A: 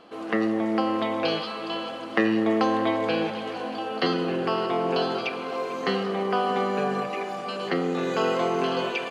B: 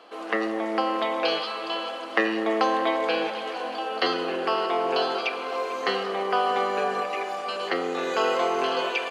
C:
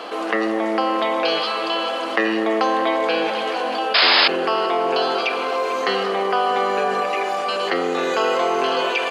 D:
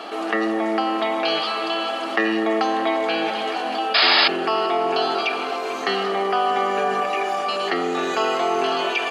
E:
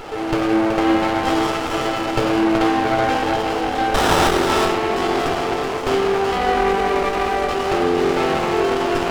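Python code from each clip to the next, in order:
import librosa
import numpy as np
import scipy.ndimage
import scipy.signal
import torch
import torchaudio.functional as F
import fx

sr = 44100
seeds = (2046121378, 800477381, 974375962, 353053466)

y1 = scipy.signal.sosfilt(scipy.signal.butter(2, 450.0, 'highpass', fs=sr, output='sos'), x)
y1 = F.gain(torch.from_numpy(y1), 2.5).numpy()
y2 = fx.spec_paint(y1, sr, seeds[0], shape='noise', start_s=3.94, length_s=0.34, low_hz=550.0, high_hz=5200.0, level_db=-14.0)
y2 = fx.env_flatten(y2, sr, amount_pct=50)
y2 = F.gain(torch.from_numpy(y2), -1.0).numpy()
y3 = fx.notch_comb(y2, sr, f0_hz=510.0)
y4 = y3 + 10.0 ** (-5.5 / 20.0) * np.pad(y3, (int(376 * sr / 1000.0), 0))[:len(y3)]
y4 = fx.room_shoebox(y4, sr, seeds[1], volume_m3=3900.0, walls='furnished', distance_m=4.3)
y4 = fx.running_max(y4, sr, window=17)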